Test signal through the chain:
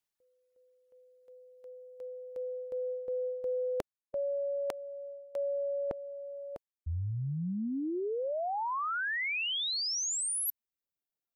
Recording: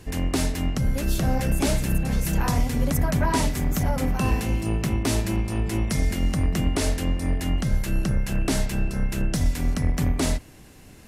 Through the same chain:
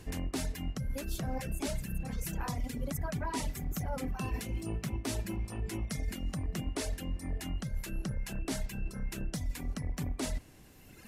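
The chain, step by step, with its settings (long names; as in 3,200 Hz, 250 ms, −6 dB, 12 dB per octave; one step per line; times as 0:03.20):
reverb reduction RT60 1.7 s
reversed playback
downward compressor 5 to 1, threshold −37 dBFS
reversed playback
level +3.5 dB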